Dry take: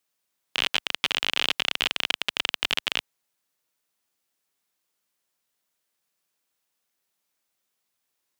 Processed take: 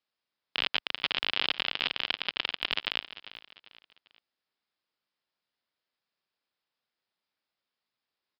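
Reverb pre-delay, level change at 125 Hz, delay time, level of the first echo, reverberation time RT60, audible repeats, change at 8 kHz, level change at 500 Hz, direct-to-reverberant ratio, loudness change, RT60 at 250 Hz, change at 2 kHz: none, -5.0 dB, 0.397 s, -15.0 dB, none, 3, under -25 dB, -4.5 dB, none, -4.5 dB, none, -4.5 dB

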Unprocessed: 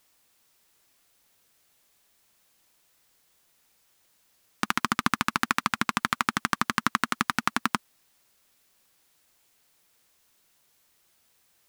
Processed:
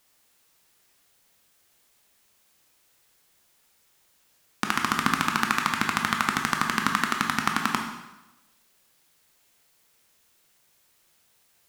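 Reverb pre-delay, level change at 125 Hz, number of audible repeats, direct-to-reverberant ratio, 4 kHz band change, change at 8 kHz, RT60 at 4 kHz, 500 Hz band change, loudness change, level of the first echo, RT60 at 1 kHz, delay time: 7 ms, +2.5 dB, none, 2.0 dB, +2.0 dB, +2.0 dB, 0.95 s, +2.0 dB, +2.0 dB, none, 1.0 s, none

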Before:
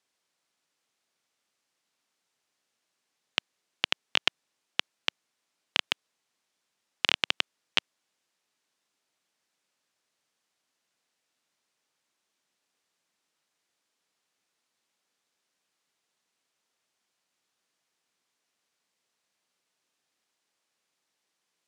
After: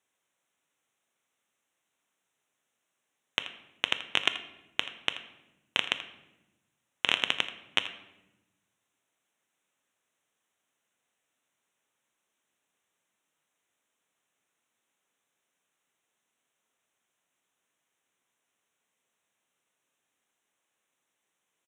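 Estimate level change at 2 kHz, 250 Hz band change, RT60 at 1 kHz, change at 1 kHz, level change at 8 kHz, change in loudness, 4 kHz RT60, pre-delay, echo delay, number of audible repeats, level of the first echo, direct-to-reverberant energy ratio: +0.5 dB, +0.5 dB, 0.85 s, +0.5 dB, -1.5 dB, -0.5 dB, 0.70 s, 7 ms, 82 ms, 1, -15.0 dB, 8.5 dB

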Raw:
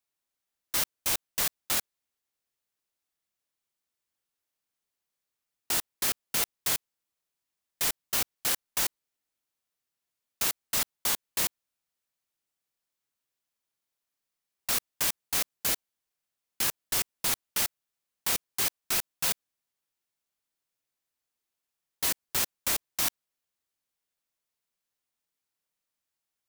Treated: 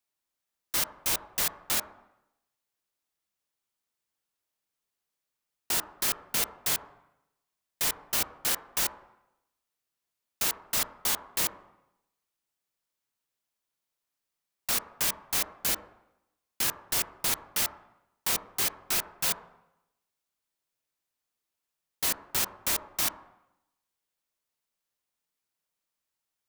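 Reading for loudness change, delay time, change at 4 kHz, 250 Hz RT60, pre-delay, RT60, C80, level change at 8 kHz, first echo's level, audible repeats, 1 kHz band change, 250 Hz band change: 0.0 dB, none, 0.0 dB, 0.90 s, 5 ms, 0.85 s, 13.5 dB, 0.0 dB, none, none, +1.5 dB, +0.5 dB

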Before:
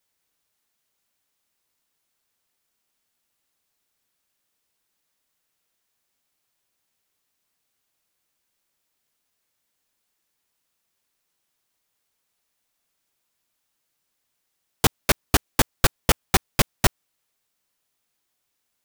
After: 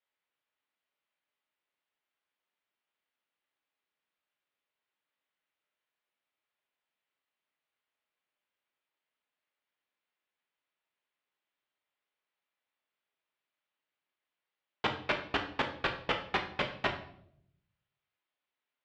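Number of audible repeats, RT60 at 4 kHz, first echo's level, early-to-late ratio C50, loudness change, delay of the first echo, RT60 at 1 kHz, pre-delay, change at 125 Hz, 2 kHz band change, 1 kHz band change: none, 0.50 s, none, 9.5 dB, -11.0 dB, none, 0.60 s, 5 ms, -18.0 dB, -6.5 dB, -7.5 dB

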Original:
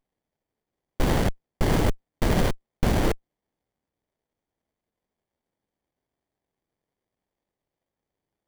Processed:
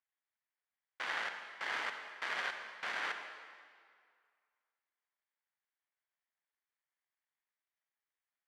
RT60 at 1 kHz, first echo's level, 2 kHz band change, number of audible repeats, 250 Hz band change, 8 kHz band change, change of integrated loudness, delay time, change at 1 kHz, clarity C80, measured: 2.1 s, none, -1.5 dB, none, -35.0 dB, -17.5 dB, -13.0 dB, none, -10.0 dB, 7.0 dB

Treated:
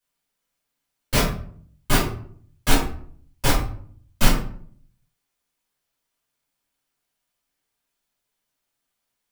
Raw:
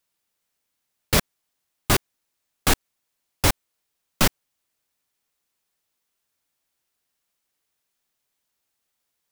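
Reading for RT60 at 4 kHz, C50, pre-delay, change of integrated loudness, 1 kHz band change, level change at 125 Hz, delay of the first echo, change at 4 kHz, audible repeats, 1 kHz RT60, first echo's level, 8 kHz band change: 0.35 s, 5.0 dB, 3 ms, -0.5 dB, +1.0 dB, +2.5 dB, none, -0.5 dB, none, 0.50 s, none, -2.0 dB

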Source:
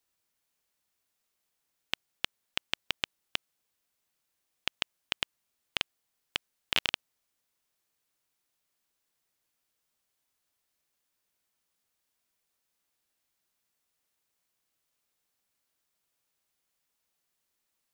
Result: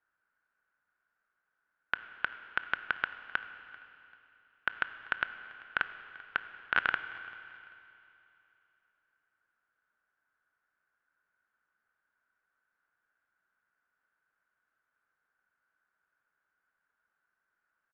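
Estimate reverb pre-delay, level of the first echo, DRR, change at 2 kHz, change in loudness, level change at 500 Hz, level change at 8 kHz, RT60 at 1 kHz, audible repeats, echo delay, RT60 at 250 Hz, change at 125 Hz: 19 ms, -22.5 dB, 10.5 dB, +6.5 dB, 0.0 dB, -1.5 dB, under -25 dB, 2.9 s, 2, 0.39 s, 3.0 s, -4.5 dB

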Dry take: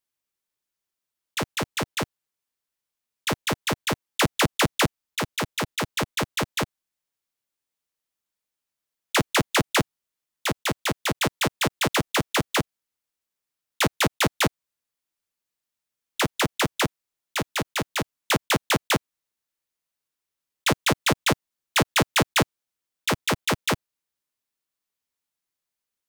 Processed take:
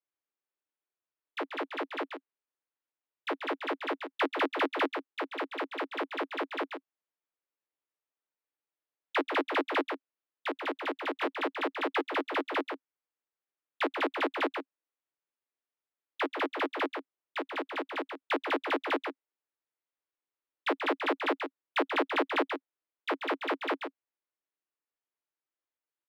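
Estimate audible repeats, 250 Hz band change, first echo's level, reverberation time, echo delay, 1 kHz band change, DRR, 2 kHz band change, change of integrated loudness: 1, -7.0 dB, -7.0 dB, none, 0.135 s, -5.0 dB, none, -7.0 dB, -8.0 dB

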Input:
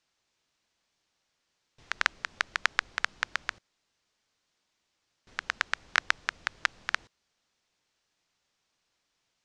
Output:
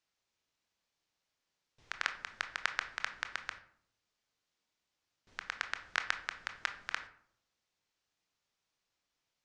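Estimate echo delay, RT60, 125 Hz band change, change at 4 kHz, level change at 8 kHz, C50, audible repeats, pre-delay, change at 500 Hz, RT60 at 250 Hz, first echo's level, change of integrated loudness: none, 0.65 s, n/a, -7.5 dB, -7.5 dB, 11.5 dB, none, 20 ms, -7.0 dB, 0.80 s, none, -7.5 dB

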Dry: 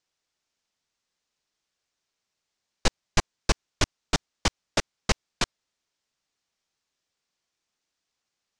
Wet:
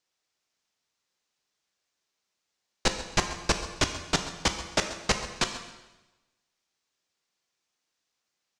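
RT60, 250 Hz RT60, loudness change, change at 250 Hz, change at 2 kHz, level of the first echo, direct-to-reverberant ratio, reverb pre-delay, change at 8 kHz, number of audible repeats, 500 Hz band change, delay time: 1.1 s, 1.1 s, +0.5 dB, 0.0 dB, +1.0 dB, -15.5 dB, 6.0 dB, 5 ms, +1.0 dB, 1, +0.5 dB, 0.133 s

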